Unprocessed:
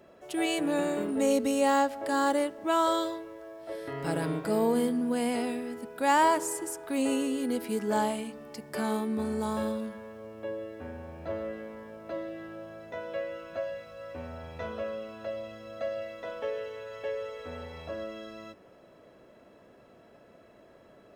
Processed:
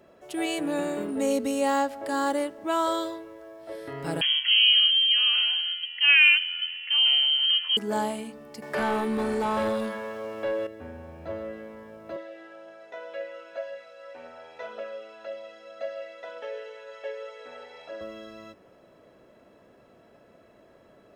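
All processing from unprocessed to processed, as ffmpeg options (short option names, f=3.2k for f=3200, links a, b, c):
-filter_complex "[0:a]asettb=1/sr,asplit=3[a][b][c];[a]atrim=end=4.214[d];[b]atrim=start=4.21:end=7.77,asetpts=PTS-STARTPTS,afade=t=in:d=0.004:c=qsin,afade=t=out:st=3.556:d=0.004:c=qsin,lowpass=f=2.9k:t=q:w=0.5098,lowpass=f=2.9k:t=q:w=0.6013,lowpass=f=2.9k:t=q:w=0.9,lowpass=f=2.9k:t=q:w=2.563,afreqshift=-3400,highpass=f=1.3k:p=1,highshelf=f=2.1k:g=11[e];[c]atrim=start=7.766[f];[d][e]acrossfade=d=0.004:c1=hsin:c2=qsin[g];[g][f]acrossfade=d=0.004:c1=qsin:c2=hsin,asettb=1/sr,asplit=3[h][i][j];[h]atrim=end=8.624[k];[i]atrim=start=8.62:end=10.67,asetpts=PTS-STARTPTS,afade=t=in:d=0.004:c=qsin,afade=t=out:st=2.046:d=0.004:c=qsin,acrossover=split=3000[l][m];[m]acompressor=threshold=-54dB:ratio=4:attack=1:release=60[n];[l][n]amix=inputs=2:normalize=0,highshelf=f=3.9k:g=8.5,asplit=2[o][p];[p]highpass=f=720:p=1,volume=20dB,asoftclip=type=tanh:threshold=-17.5dB[q];[o][q]amix=inputs=2:normalize=0,lowpass=f=2.4k:p=1,volume=-6dB[r];[j]atrim=start=10.666[s];[k][r]acrossfade=d=0.004:c1=hsin:c2=qsin[t];[t][s]acrossfade=d=0.004:c1=qsin:c2=hsin,asettb=1/sr,asplit=3[u][v][w];[u]atrim=end=12.164[x];[v]atrim=start=12.16:end=18.01,asetpts=PTS-STARTPTS,afade=t=in:d=0.004:c=qsin,afade=t=out:st=5.846:d=0.004:c=qsin,highpass=490,lowpass=7.9k,bandreject=f=1.1k:w=10,aphaser=in_gain=1:out_gain=1:delay=2.9:decay=0.28:speed=1.9:type=triangular[y];[w]atrim=start=18.006[z];[x][y]acrossfade=d=0.004:c1=hsin:c2=qsin[aa];[aa][z]acrossfade=d=0.004:c1=qsin:c2=hsin"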